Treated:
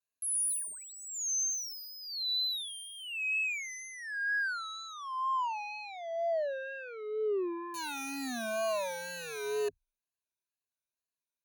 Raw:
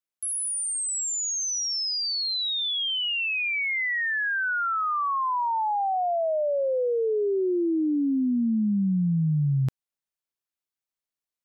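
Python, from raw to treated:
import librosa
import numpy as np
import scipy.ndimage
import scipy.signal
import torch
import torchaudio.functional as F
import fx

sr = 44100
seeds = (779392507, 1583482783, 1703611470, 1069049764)

y = (np.mod(10.0 ** (21.0 / 20.0) * x + 1.0, 2.0) - 1.0) / 10.0 ** (21.0 / 20.0)
y = fx.rider(y, sr, range_db=4, speed_s=2.0)
y = 10.0 ** (-30.0 / 20.0) * np.tanh(y / 10.0 ** (-30.0 / 20.0))
y = fx.ripple_eq(y, sr, per_octave=1.5, db=18)
y = fx.vibrato(y, sr, rate_hz=2.1, depth_cents=92.0)
y = F.gain(torch.from_numpy(y), -7.5).numpy()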